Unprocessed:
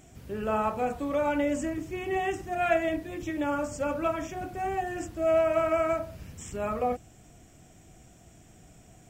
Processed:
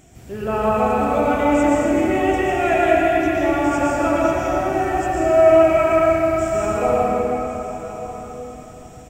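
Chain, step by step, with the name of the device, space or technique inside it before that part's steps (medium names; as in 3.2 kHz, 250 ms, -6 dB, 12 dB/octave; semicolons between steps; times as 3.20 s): cathedral (reverberation RT60 4.0 s, pre-delay 108 ms, DRR -6 dB); delay 1089 ms -14 dB; trim +4 dB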